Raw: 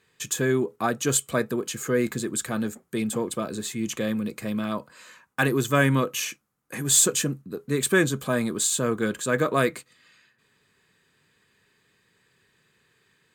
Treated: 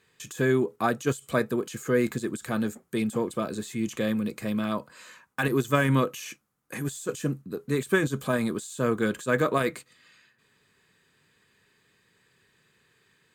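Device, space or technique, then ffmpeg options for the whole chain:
de-esser from a sidechain: -filter_complex "[0:a]asplit=2[s0][s1];[s1]highpass=f=6100:w=0.5412,highpass=f=6100:w=1.3066,apad=whole_len=588451[s2];[s0][s2]sidechaincompress=threshold=0.00891:ratio=6:attack=2.2:release=33"

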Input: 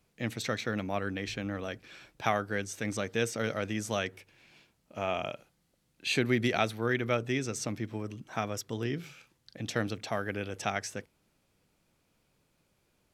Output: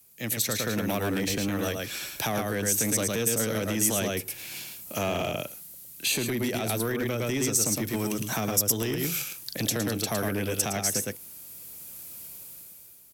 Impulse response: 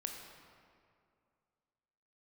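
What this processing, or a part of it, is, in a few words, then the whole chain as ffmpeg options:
FM broadcast chain: -filter_complex "[0:a]highpass=42,aecho=1:1:109:0.596,dynaudnorm=f=250:g=7:m=5.62,acrossover=split=160|500|1000[s0][s1][s2][s3];[s0]acompressor=threshold=0.0251:ratio=4[s4];[s1]acompressor=threshold=0.0708:ratio=4[s5];[s2]acompressor=threshold=0.0158:ratio=4[s6];[s3]acompressor=threshold=0.0178:ratio=4[s7];[s4][s5][s6][s7]amix=inputs=4:normalize=0,aemphasis=mode=production:type=50fm,alimiter=limit=0.119:level=0:latency=1:release=142,asoftclip=type=hard:threshold=0.075,lowpass=f=15000:w=0.5412,lowpass=f=15000:w=1.3066,aemphasis=mode=production:type=50fm"

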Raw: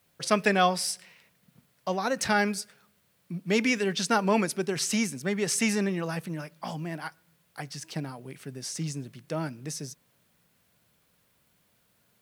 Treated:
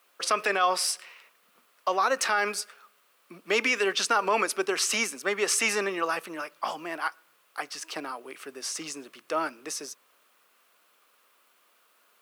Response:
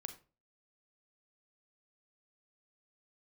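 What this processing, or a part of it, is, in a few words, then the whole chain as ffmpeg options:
laptop speaker: -af "highpass=f=330:w=0.5412,highpass=f=330:w=1.3066,equalizer=f=1200:t=o:w=0.54:g=11,equalizer=f=2700:t=o:w=0.51:g=4.5,alimiter=limit=0.15:level=0:latency=1:release=62,volume=1.33"

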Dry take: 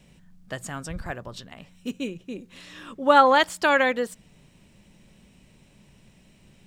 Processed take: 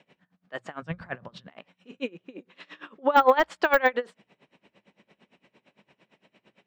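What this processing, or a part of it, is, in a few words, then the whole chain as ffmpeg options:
helicopter radio: -filter_complex "[0:a]highpass=370,lowpass=2600,aeval=exprs='val(0)*pow(10,-24*(0.5-0.5*cos(2*PI*8.8*n/s))/20)':c=same,asoftclip=type=hard:threshold=0.188,bandreject=f=60:t=h:w=6,bandreject=f=120:t=h:w=6,deesser=1,asettb=1/sr,asplit=3[s0][s1][s2];[s0]atrim=end=0.824[s3];[s1]atrim=start=0.82:end=1.48,asetpts=PTS-STARTPTS,afade=t=in:d=0.004:c=qsin,afade=t=out:st=0.656:d=0.004:c=qsin,lowshelf=f=230:t=q:w=1.5:g=12.5[s4];[s2]atrim=start=1.476[s5];[s3][s4]acrossfade=d=0.004:c1=hsin:c2=qsin[s6];[s6][s5]acrossfade=d=0.004:c1=qsin:c2=hsin,volume=2.24"

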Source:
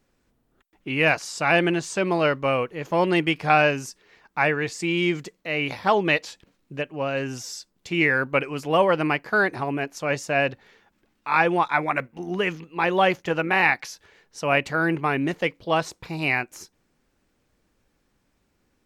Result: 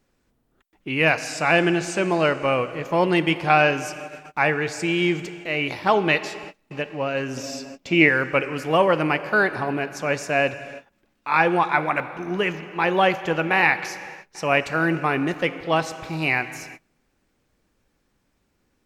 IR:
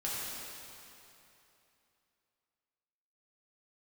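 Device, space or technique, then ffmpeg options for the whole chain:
keyed gated reverb: -filter_complex "[0:a]asplit=3[s0][s1][s2];[1:a]atrim=start_sample=2205[s3];[s1][s3]afir=irnorm=-1:irlink=0[s4];[s2]apad=whole_len=831352[s5];[s4][s5]sidechaingate=range=0.0224:threshold=0.00178:ratio=16:detection=peak,volume=0.188[s6];[s0][s6]amix=inputs=2:normalize=0,asettb=1/sr,asplit=3[s7][s8][s9];[s7]atrim=end=7.374[s10];[s8]atrim=start=7.37:end=8.09,asetpts=PTS-STARTPTS,afade=t=in:d=0.004:c=qsin,afade=t=out:st=0.716:d=0.004:c=qsin,equalizer=f=250:t=o:w=0.67:g=9,equalizer=f=630:t=o:w=0.67:g=9,equalizer=f=2500:t=o:w=0.67:g=5,equalizer=f=10000:t=o:w=0.67:g=-8[s11];[s9]atrim=start=8.086[s12];[s10][s11]acrossfade=d=0.004:c1=hsin:c2=qsin[s13];[s13][s12]acrossfade=d=0.004:c1=qsin:c2=hsin"

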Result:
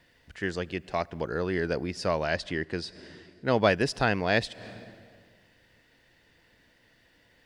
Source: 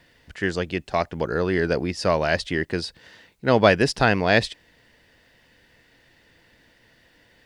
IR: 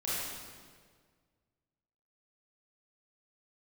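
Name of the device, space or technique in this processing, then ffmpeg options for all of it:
ducked reverb: -filter_complex "[0:a]asettb=1/sr,asplit=3[s0][s1][s2];[s0]atrim=end=2.244[s3];[s1]atrim=start=2.24:end=3.45,asetpts=PTS-STARTPTS,afade=t=in:d=0.004:c=qsin,afade=t=out:st=1.206:d=0.004:c=qsin,lowpass=8900[s4];[s2]atrim=start=3.446[s5];[s3][s4]acrossfade=d=0.004:c1=hsin:c2=qsin[s6];[s6][s5]acrossfade=d=0.004:c1=qsin:c2=hsin,asplit=3[s7][s8][s9];[1:a]atrim=start_sample=2205[s10];[s8][s10]afir=irnorm=-1:irlink=0[s11];[s9]apad=whole_len=328924[s12];[s11][s12]sidechaincompress=threshold=0.01:ratio=8:attack=8.2:release=150,volume=0.188[s13];[s7][s13]amix=inputs=2:normalize=0,volume=0.473"

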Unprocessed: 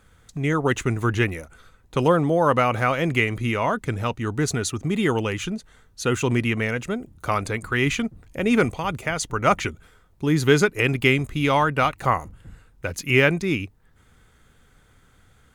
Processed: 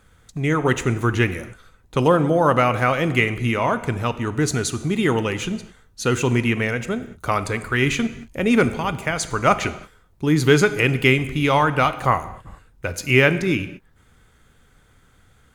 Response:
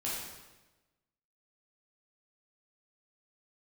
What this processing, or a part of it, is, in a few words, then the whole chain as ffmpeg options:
keyed gated reverb: -filter_complex "[0:a]asplit=3[s0][s1][s2];[1:a]atrim=start_sample=2205[s3];[s1][s3]afir=irnorm=-1:irlink=0[s4];[s2]apad=whole_len=685628[s5];[s4][s5]sidechaingate=range=0.0224:threshold=0.00708:ratio=16:detection=peak,volume=0.2[s6];[s0][s6]amix=inputs=2:normalize=0,volume=1.12"

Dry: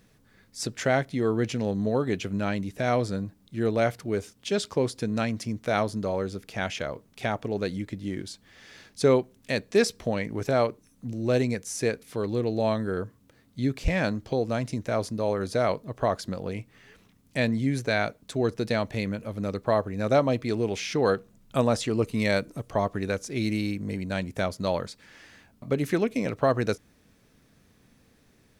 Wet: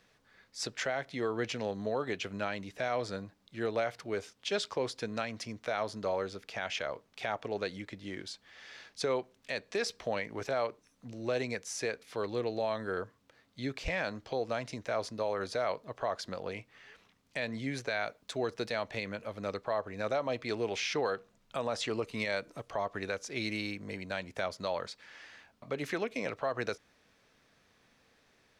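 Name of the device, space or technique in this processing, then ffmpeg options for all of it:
DJ mixer with the lows and highs turned down: -filter_complex "[0:a]acrossover=split=480 6300:gain=0.224 1 0.224[s0][s1][s2];[s0][s1][s2]amix=inputs=3:normalize=0,alimiter=limit=0.075:level=0:latency=1:release=114,asettb=1/sr,asplit=3[s3][s4][s5];[s3]atrim=end=18.014[s6];[s4]atrim=start=18.01:end=18.79,asetpts=PTS-STARTPTS,afade=t=in:d=0.004:c=qsin,afade=t=out:st=0.776:d=0.004:c=qsin,highshelf=f=9800:g=5.5[s7];[s5]atrim=start=18.786[s8];[s6][s7]acrossfade=d=0.004:c1=hsin:c2=qsin[s9];[s9][s8]acrossfade=d=0.004:c1=qsin:c2=hsin"

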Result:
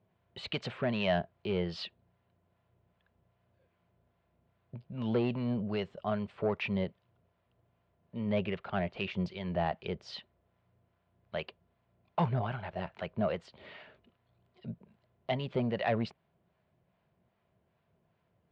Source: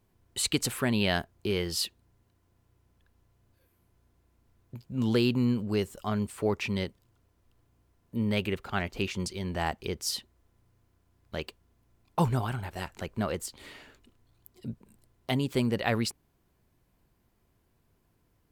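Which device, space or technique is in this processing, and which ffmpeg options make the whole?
guitar amplifier with harmonic tremolo: -filter_complex "[0:a]acrossover=split=710[s0][s1];[s0]aeval=exprs='val(0)*(1-0.5/2+0.5/2*cos(2*PI*2.5*n/s))':c=same[s2];[s1]aeval=exprs='val(0)*(1-0.5/2-0.5/2*cos(2*PI*2.5*n/s))':c=same[s3];[s2][s3]amix=inputs=2:normalize=0,asoftclip=type=tanh:threshold=0.0794,highpass=100,equalizer=f=170:t=q:w=4:g=5,equalizer=f=290:t=q:w=4:g=-9,equalizer=f=630:t=q:w=4:g=9,lowpass=f=3500:w=0.5412,lowpass=f=3500:w=1.3066"

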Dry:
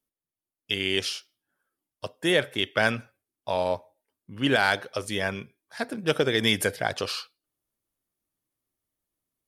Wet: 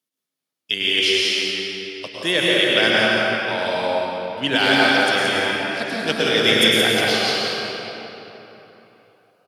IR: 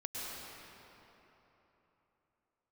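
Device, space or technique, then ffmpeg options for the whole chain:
PA in a hall: -filter_complex "[0:a]highpass=f=130:w=0.5412,highpass=f=130:w=1.3066,equalizer=f=3900:t=o:w=2.2:g=8,aecho=1:1:174:0.562[s0];[1:a]atrim=start_sample=2205[s1];[s0][s1]afir=irnorm=-1:irlink=0,volume=1.41"

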